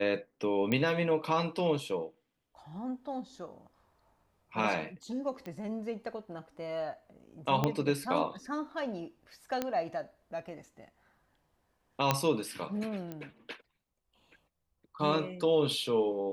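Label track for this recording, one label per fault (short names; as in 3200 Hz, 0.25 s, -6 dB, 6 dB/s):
0.720000	0.720000	pop -17 dBFS
5.460000	5.460000	pop -29 dBFS
7.640000	7.640000	pop -14 dBFS
9.620000	9.620000	pop -17 dBFS
12.110000	12.110000	pop -10 dBFS
13.120000	13.120000	pop -26 dBFS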